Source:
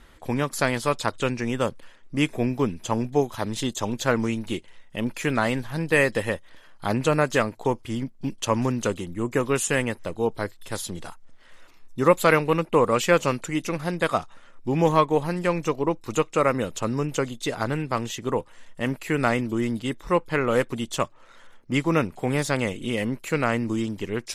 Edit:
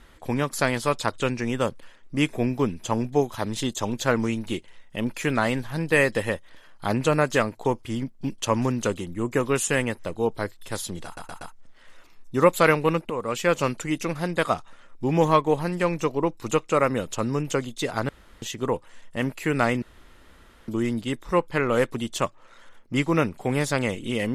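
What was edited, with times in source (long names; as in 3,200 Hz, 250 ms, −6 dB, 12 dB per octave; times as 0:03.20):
0:11.05: stutter 0.12 s, 4 plays
0:12.74–0:13.33: fade in linear, from −13 dB
0:17.73–0:18.06: fill with room tone
0:19.46: splice in room tone 0.86 s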